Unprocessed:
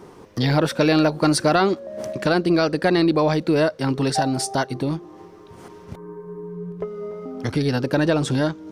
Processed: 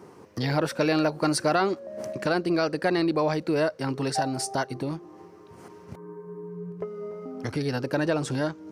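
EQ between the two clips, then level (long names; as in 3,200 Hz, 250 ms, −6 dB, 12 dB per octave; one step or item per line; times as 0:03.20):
high-pass filter 81 Hz
parametric band 3,500 Hz −6.5 dB 0.33 octaves
dynamic equaliser 200 Hz, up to −4 dB, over −29 dBFS, Q 1
−4.5 dB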